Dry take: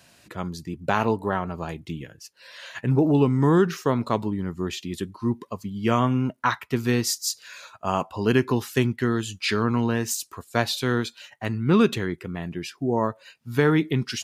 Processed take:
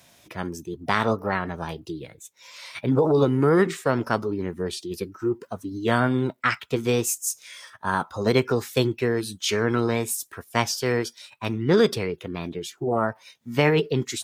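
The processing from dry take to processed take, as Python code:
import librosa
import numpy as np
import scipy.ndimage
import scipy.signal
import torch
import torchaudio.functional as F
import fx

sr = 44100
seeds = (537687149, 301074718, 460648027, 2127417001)

y = fx.formant_shift(x, sr, semitones=5)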